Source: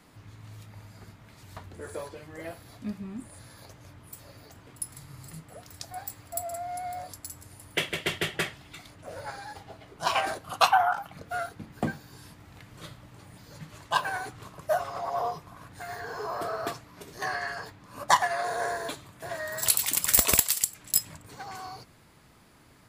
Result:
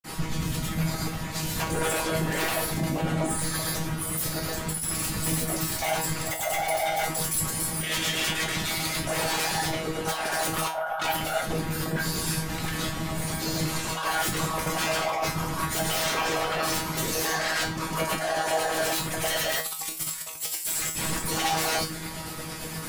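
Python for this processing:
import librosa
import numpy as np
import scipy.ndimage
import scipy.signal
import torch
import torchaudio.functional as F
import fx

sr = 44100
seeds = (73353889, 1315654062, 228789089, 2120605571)

y = fx.high_shelf(x, sr, hz=6000.0, db=10.0)
y = fx.over_compress(y, sr, threshold_db=-37.0, ratio=-1.0)
y = fx.granulator(y, sr, seeds[0], grain_ms=215.0, per_s=8.7, spray_ms=100.0, spread_st=0)
y = fx.fold_sine(y, sr, drive_db=18, ceiling_db=-16.5)
y = fx.whisperise(y, sr, seeds[1])
y = fx.comb_fb(y, sr, f0_hz=160.0, decay_s=0.31, harmonics='all', damping=0.0, mix_pct=90)
y = y * 10.0 ** (3.5 / 20.0)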